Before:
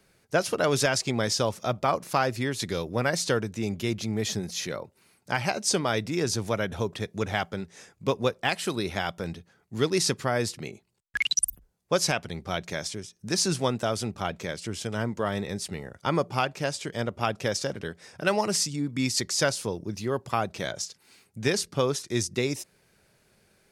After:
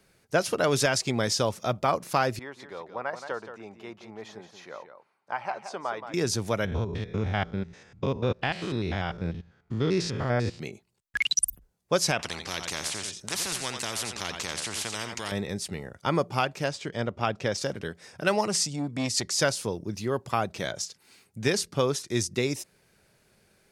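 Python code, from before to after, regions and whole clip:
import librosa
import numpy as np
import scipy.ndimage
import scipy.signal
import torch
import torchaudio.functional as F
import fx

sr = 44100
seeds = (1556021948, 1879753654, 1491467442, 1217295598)

y = fx.chain(x, sr, fx.bandpass_q(hz=940.0, q=1.8),
    fx.echo_single(ms=174, db=-9.5), at=(2.39, 6.14))
y = fx.chain(y, sr, fx.spec_steps(hold_ms=100),
    fx.lowpass(hz=4300.0, slope=12),
    fx.low_shelf(hz=130.0, db=11.5), at=(6.65, 10.6))
y = fx.chain(y, sr, fx.lowpass(hz=8000.0, slope=12),
    fx.echo_single(ms=87, db=-14.5),
    fx.spectral_comp(ratio=4.0), at=(12.19, 15.32))
y = fx.chain(y, sr, fx.median_filter(points=3),
    fx.air_absorb(metres=59.0), at=(16.68, 17.58))
y = fx.chain(y, sr, fx.lowpass(hz=11000.0, slope=24),
    fx.transformer_sat(knee_hz=810.0), at=(18.45, 19.32))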